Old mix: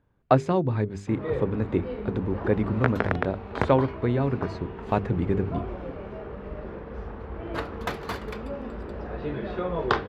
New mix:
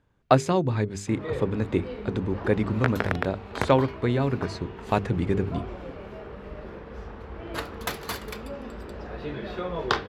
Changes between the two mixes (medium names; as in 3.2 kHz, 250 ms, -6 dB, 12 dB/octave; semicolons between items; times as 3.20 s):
background -3.0 dB; master: remove low-pass 1.6 kHz 6 dB/octave